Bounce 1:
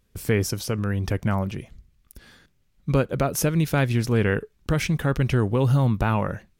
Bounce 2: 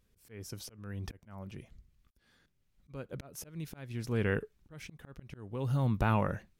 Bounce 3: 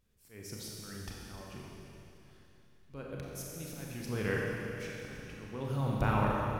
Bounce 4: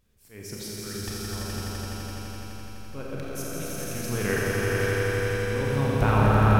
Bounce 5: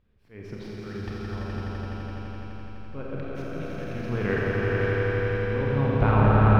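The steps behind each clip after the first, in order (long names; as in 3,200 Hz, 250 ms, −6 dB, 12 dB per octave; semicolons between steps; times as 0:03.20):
volume swells 775 ms; level −5.5 dB
harmonic and percussive parts rebalanced harmonic −6 dB; four-comb reverb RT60 3.1 s, combs from 29 ms, DRR −3 dB; level −1 dB
echo that builds up and dies away 84 ms, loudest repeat 5, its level −5 dB; level +6 dB
stylus tracing distortion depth 0.038 ms; high-frequency loss of the air 350 metres; level +1.5 dB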